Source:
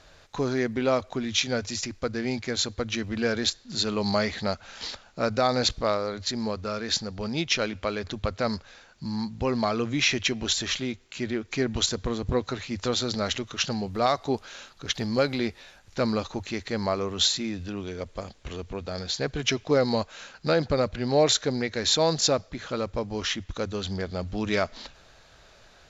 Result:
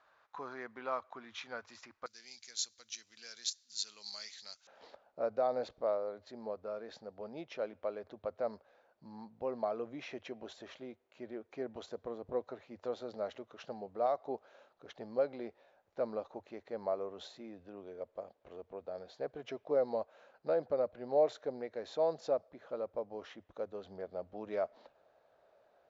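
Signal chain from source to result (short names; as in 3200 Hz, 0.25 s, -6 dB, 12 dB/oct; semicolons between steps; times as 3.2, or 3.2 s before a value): band-pass 1100 Hz, Q 2.2, from 2.06 s 6100 Hz, from 4.67 s 600 Hz; gain -5.5 dB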